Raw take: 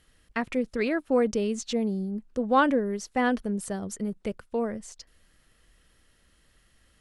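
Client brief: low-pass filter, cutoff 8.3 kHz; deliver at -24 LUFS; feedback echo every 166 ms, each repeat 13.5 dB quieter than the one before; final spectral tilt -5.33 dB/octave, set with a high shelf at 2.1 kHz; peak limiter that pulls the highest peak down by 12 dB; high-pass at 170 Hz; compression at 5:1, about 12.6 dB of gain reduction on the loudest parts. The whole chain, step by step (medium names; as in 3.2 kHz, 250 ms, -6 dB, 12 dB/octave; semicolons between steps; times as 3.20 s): high-pass 170 Hz; low-pass 8.3 kHz; treble shelf 2.1 kHz -6 dB; compression 5:1, threshold -32 dBFS; peak limiter -31 dBFS; feedback delay 166 ms, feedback 21%, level -13.5 dB; trim +16 dB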